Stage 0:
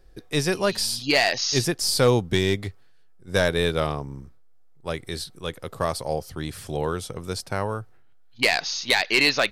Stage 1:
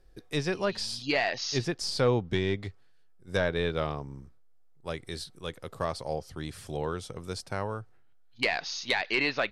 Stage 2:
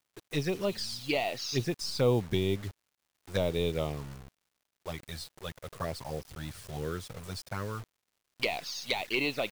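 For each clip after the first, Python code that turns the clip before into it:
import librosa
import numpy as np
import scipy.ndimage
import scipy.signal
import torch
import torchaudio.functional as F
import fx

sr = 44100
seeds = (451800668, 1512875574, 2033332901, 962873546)

y1 = fx.env_lowpass_down(x, sr, base_hz=2800.0, full_db=-16.5)
y1 = y1 * 10.0 ** (-6.0 / 20.0)
y2 = fx.env_flanger(y1, sr, rest_ms=3.1, full_db=-24.5)
y2 = fx.quant_dither(y2, sr, seeds[0], bits=8, dither='none')
y2 = fx.dmg_crackle(y2, sr, seeds[1], per_s=250.0, level_db=-62.0)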